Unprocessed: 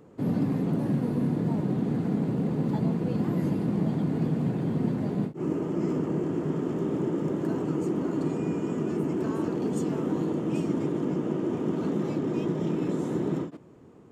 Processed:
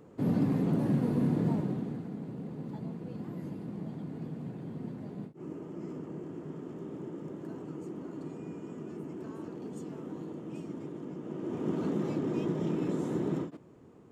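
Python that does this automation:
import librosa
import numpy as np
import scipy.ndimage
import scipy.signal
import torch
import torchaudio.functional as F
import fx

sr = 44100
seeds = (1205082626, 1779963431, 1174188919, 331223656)

y = fx.gain(x, sr, db=fx.line((1.49, -1.5), (2.09, -13.0), (11.19, -13.0), (11.7, -3.5)))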